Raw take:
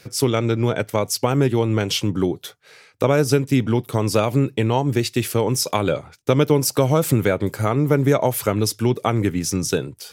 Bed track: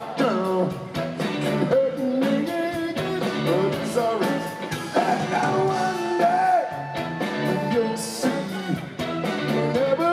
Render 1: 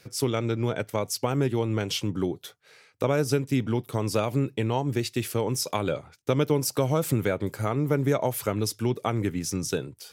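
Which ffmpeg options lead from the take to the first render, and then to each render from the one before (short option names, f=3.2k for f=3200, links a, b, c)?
-af "volume=-7dB"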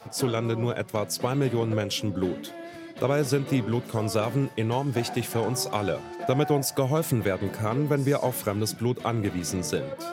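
-filter_complex "[1:a]volume=-15dB[a];[0:a][a]amix=inputs=2:normalize=0"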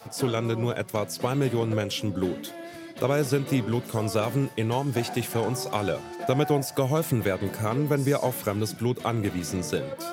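-filter_complex "[0:a]acrossover=split=3600[a][b];[b]acompressor=threshold=-38dB:ratio=4:attack=1:release=60[c];[a][c]amix=inputs=2:normalize=0,highshelf=f=6.2k:g=8"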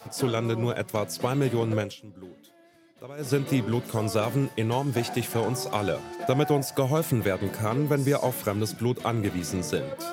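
-filter_complex "[0:a]asplit=3[a][b][c];[a]atrim=end=1.96,asetpts=PTS-STARTPTS,afade=t=out:st=1.8:d=0.16:silence=0.133352[d];[b]atrim=start=1.96:end=3.17,asetpts=PTS-STARTPTS,volume=-17.5dB[e];[c]atrim=start=3.17,asetpts=PTS-STARTPTS,afade=t=in:d=0.16:silence=0.133352[f];[d][e][f]concat=n=3:v=0:a=1"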